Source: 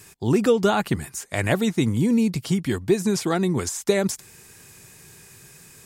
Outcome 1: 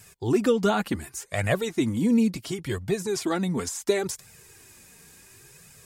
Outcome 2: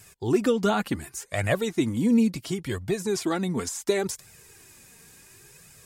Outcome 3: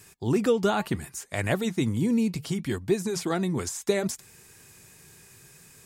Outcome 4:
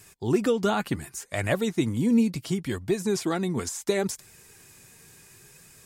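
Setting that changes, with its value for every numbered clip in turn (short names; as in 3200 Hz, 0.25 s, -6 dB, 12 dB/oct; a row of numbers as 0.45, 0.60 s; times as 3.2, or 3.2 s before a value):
flange, regen: -12, +21, -88, +63%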